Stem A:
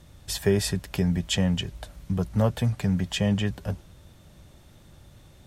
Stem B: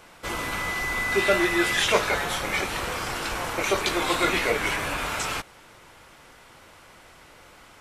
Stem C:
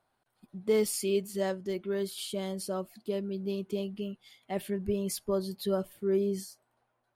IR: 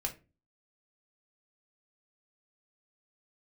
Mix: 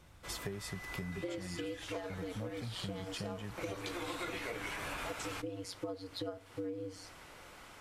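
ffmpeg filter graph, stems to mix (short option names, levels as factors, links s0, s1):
-filter_complex "[0:a]volume=0.316[s0];[1:a]volume=0.668,afade=t=in:st=3.54:d=0.74:silence=0.237137[s1];[2:a]highpass=230,aeval=exprs='val(0)*sin(2*PI*91*n/s)':c=same,lowpass=5400,adelay=550,volume=1.26,asplit=2[s2][s3];[s3]volume=0.398[s4];[3:a]atrim=start_sample=2205[s5];[s4][s5]afir=irnorm=-1:irlink=0[s6];[s0][s1][s2][s6]amix=inputs=4:normalize=0,acompressor=threshold=0.0141:ratio=12"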